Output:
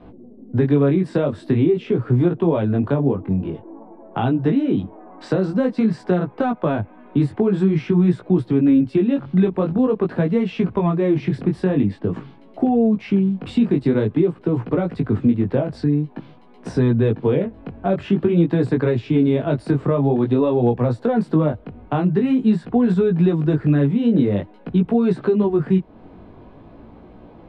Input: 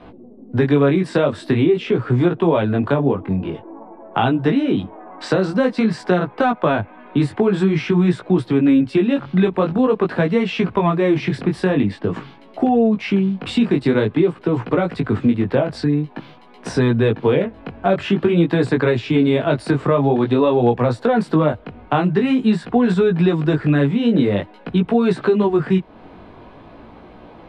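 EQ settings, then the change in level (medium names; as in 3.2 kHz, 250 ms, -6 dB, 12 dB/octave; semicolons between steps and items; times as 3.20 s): tilt shelf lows +5.5 dB, about 640 Hz; -4.5 dB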